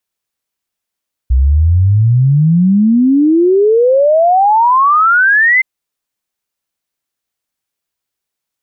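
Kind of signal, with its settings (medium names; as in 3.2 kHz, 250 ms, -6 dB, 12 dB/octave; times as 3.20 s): log sweep 61 Hz -> 2.1 kHz 4.32 s -6 dBFS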